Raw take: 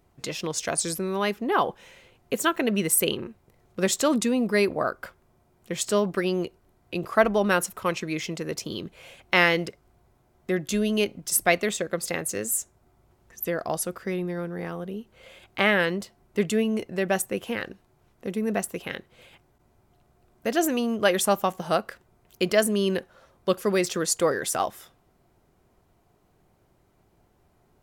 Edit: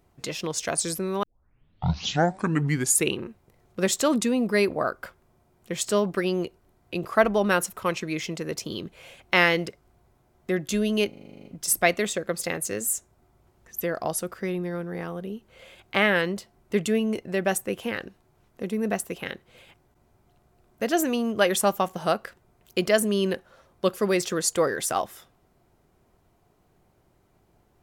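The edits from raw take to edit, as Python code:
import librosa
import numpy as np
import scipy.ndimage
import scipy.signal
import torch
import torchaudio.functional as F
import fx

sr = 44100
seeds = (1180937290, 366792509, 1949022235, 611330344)

y = fx.edit(x, sr, fx.tape_start(start_s=1.23, length_s=2.0),
    fx.stutter(start_s=11.09, slice_s=0.04, count=10), tone=tone)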